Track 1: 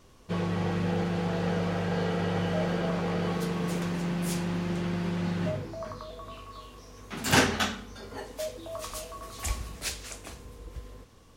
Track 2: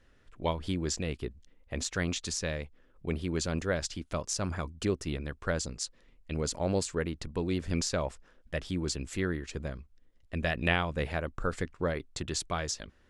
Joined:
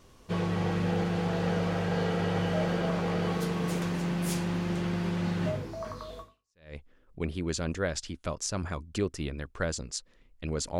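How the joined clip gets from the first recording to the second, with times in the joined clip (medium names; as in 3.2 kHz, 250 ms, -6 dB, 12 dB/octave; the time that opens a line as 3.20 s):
track 1
6.48 s: go over to track 2 from 2.35 s, crossfade 0.56 s exponential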